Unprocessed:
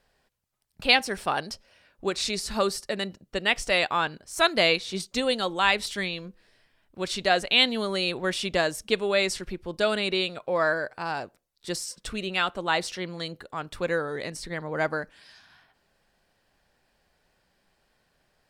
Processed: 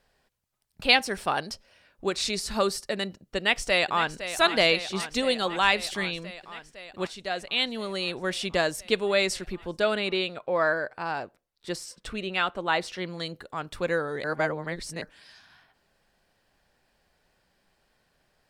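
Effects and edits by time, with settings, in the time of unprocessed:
0:03.37–0:04.16: delay throw 510 ms, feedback 80%, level −11 dB
0:07.07–0:08.73: fade in linear, from −12 dB
0:09.79–0:12.98: bass and treble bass −2 dB, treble −7 dB
0:14.24–0:15.02: reverse

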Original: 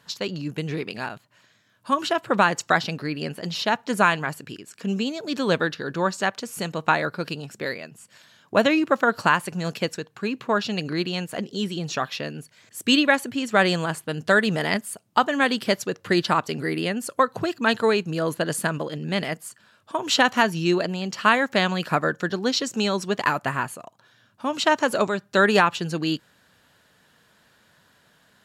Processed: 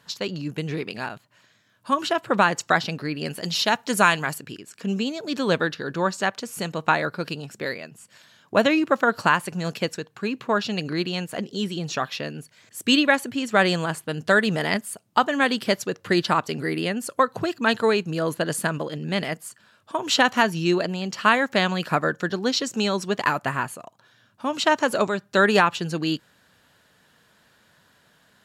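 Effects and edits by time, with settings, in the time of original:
0:03.25–0:04.38: high-shelf EQ 3,700 Hz +9.5 dB

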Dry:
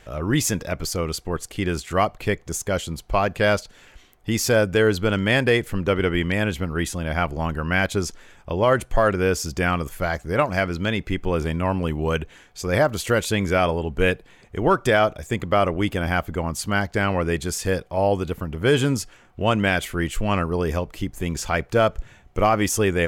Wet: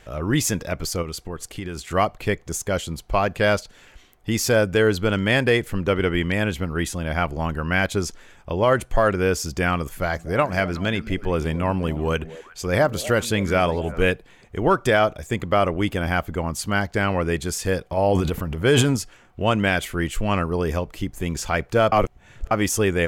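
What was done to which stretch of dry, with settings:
0:01.02–0:01.90: downward compressor, threshold −26 dBFS
0:09.84–0:14.08: echo through a band-pass that steps 122 ms, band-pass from 200 Hz, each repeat 1.4 octaves, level −11 dB
0:17.91–0:18.96: transient designer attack +1 dB, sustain +10 dB
0:21.92–0:22.51: reverse

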